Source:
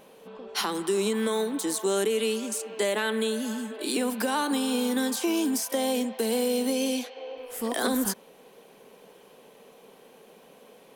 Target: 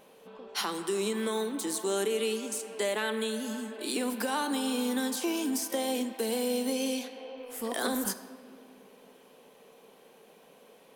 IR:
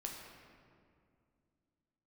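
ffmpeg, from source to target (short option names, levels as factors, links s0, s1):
-filter_complex "[0:a]asplit=2[s0][s1];[1:a]atrim=start_sample=2205,lowshelf=f=250:g=-11.5[s2];[s1][s2]afir=irnorm=-1:irlink=0,volume=0.708[s3];[s0][s3]amix=inputs=2:normalize=0,volume=0.473"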